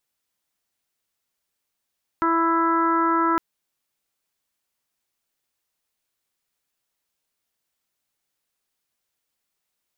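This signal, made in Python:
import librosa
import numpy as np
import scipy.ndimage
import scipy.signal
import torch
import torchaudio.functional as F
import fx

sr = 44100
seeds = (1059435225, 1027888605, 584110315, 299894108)

y = fx.additive_steady(sr, length_s=1.16, hz=331.0, level_db=-22.5, upper_db=(-12.5, 0, 1.0, -10.5, -17))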